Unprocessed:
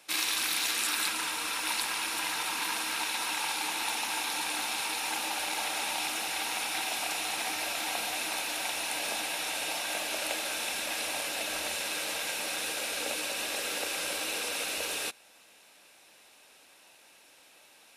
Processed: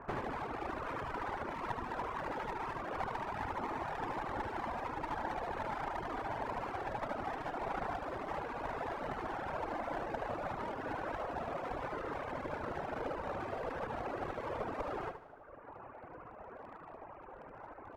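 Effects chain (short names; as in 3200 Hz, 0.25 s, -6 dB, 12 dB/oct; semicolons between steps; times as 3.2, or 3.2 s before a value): CVSD 16 kbps; whisperiser; compressor 6:1, threshold -44 dBFS, peak gain reduction 13 dB; LPF 1200 Hz 24 dB/oct; bell 190 Hz -7.5 dB 0.37 oct; one-sided clip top -56.5 dBFS; on a send: feedback echo 75 ms, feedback 60%, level -4 dB; on the sum: reverb removal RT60 1.5 s; gain +14.5 dB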